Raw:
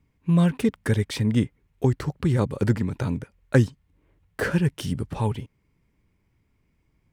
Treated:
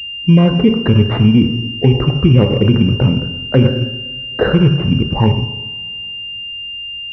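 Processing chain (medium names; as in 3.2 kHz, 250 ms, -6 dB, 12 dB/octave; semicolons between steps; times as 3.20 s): resonances exaggerated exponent 1.5; two-slope reverb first 0.91 s, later 3.5 s, from -25 dB, DRR 5 dB; loudness maximiser +14.5 dB; class-D stage that switches slowly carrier 2.8 kHz; trim -1 dB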